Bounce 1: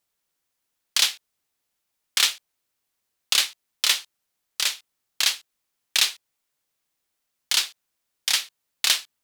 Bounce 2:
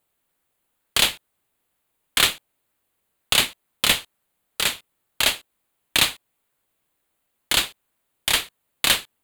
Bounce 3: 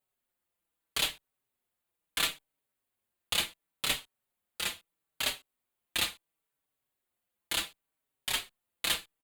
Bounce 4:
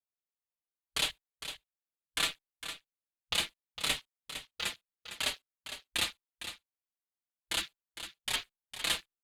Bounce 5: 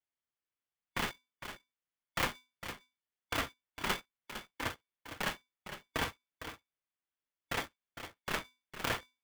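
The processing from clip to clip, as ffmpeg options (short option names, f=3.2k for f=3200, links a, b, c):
-filter_complex "[0:a]equalizer=f=5.5k:w=2.3:g=-14.5,asplit=2[a][b];[b]acrusher=samples=17:mix=1:aa=0.000001:lfo=1:lforange=10.2:lforate=2.1,volume=-11.5dB[c];[a][c]amix=inputs=2:normalize=0,volume=5dB"
-filter_complex "[0:a]asplit=2[a][b];[b]adelay=4.9,afreqshift=-0.73[c];[a][c]amix=inputs=2:normalize=1,volume=-8.5dB"
-af "afwtdn=0.00562,aecho=1:1:457:0.299,volume=-1dB"
-af "lowpass=f=2.5k:t=q:w=0.5098,lowpass=f=2.5k:t=q:w=0.6013,lowpass=f=2.5k:t=q:w=0.9,lowpass=f=2.5k:t=q:w=2.563,afreqshift=-2900,aeval=exprs='val(0)*sgn(sin(2*PI*630*n/s))':c=same,volume=3.5dB"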